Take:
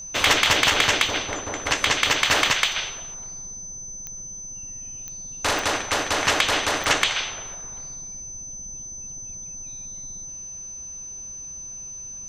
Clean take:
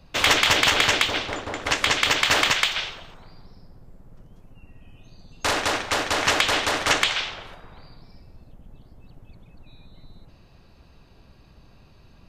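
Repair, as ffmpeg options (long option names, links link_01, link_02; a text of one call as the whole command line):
ffmpeg -i in.wav -af "adeclick=threshold=4,bandreject=frequency=6100:width=30" out.wav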